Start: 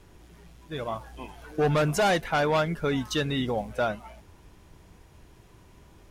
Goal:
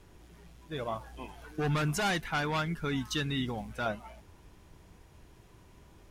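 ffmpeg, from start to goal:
-filter_complex "[0:a]asettb=1/sr,asplit=3[a][b][c];[a]atrim=end=1.484[d];[b]atrim=start=1.48:end=3.86,asetpts=PTS-STARTPTS,afade=t=in:d=0.004:c=qsin,afade=t=out:st=2.376:d=0.004:c=qsin,equalizer=f=560:w=1.7:g=-12[e];[c]atrim=start=3.856[f];[d][e]acrossfade=d=0.004:c1=hsin:c2=qsin[g];[g][f]acrossfade=d=0.004:c1=qsin:c2=hsin,volume=-3dB"

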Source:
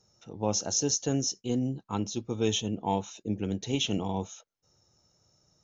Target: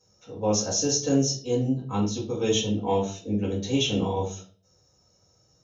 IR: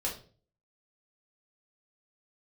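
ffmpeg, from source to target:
-filter_complex "[0:a]highpass=52[a];[1:a]atrim=start_sample=2205[b];[a][b]afir=irnorm=-1:irlink=0"

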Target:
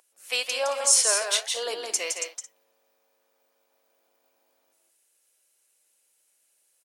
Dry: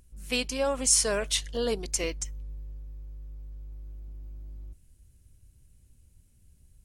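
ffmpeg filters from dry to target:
-af "highpass=f=560:w=0.5412,highpass=f=560:w=1.3066,flanger=delay=1.4:depth=9.4:regen=-89:speed=1.3:shape=sinusoidal,aecho=1:1:164|221:0.562|0.168,volume=7.5dB"

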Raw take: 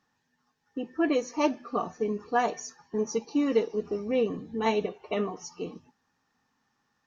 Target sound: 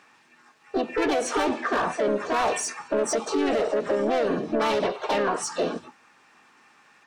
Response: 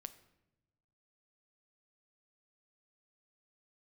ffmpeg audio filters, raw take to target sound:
-filter_complex "[0:a]asplit=2[a][b];[b]highpass=f=720:p=1,volume=25dB,asoftclip=type=tanh:threshold=-12.5dB[c];[a][c]amix=inputs=2:normalize=0,lowpass=f=2.4k:p=1,volume=-6dB,asplit=3[d][e][f];[e]asetrate=58866,aresample=44100,atempo=0.749154,volume=-3dB[g];[f]asetrate=66075,aresample=44100,atempo=0.66742,volume=-5dB[h];[d][g][h]amix=inputs=3:normalize=0,alimiter=limit=-16dB:level=0:latency=1:release=95"

